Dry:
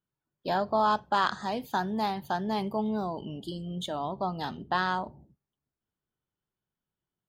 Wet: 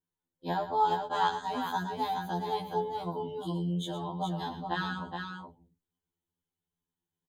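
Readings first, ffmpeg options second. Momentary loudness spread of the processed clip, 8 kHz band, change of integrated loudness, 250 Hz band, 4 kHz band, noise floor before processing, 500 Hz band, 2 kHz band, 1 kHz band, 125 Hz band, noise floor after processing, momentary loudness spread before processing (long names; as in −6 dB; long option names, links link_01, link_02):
10 LU, −1.0 dB, −2.5 dB, −3.0 dB, −2.0 dB, below −85 dBFS, −3.0 dB, −4.5 dB, −1.5 dB, +1.5 dB, below −85 dBFS, 11 LU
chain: -af "superequalizer=8b=0.447:10b=0.447:11b=0.708:12b=0.562:14b=0.398,aecho=1:1:115|420:0.251|0.531,afftfilt=real='re*2*eq(mod(b,4),0)':imag='im*2*eq(mod(b,4),0)':win_size=2048:overlap=0.75"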